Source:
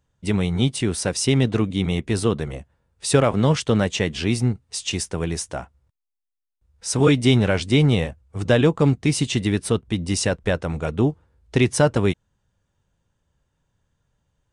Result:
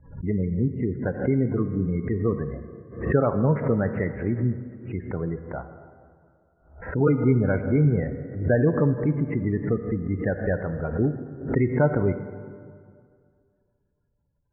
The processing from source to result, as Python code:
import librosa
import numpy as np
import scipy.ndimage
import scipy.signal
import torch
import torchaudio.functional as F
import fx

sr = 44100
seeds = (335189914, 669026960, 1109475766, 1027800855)

y = fx.spec_gate(x, sr, threshold_db=-20, keep='strong')
y = scipy.signal.sosfilt(scipy.signal.butter(16, 2100.0, 'lowpass', fs=sr, output='sos'), y)
y = fx.rev_plate(y, sr, seeds[0], rt60_s=2.2, hf_ratio=0.5, predelay_ms=0, drr_db=8.5)
y = fx.pre_swell(y, sr, db_per_s=110.0)
y = y * librosa.db_to_amplitude(-4.0)